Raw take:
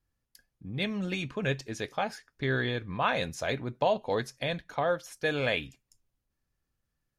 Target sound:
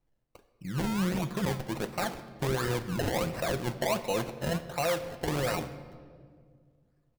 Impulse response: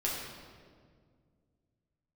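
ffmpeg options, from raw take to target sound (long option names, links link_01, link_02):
-filter_complex "[0:a]aecho=1:1:5.7:0.6,alimiter=limit=-22.5dB:level=0:latency=1:release=27,acrusher=samples=26:mix=1:aa=0.000001:lfo=1:lforange=26:lforate=1.4,asplit=2[link_01][link_02];[1:a]atrim=start_sample=2205[link_03];[link_02][link_03]afir=irnorm=-1:irlink=0,volume=-13.5dB[link_04];[link_01][link_04]amix=inputs=2:normalize=0"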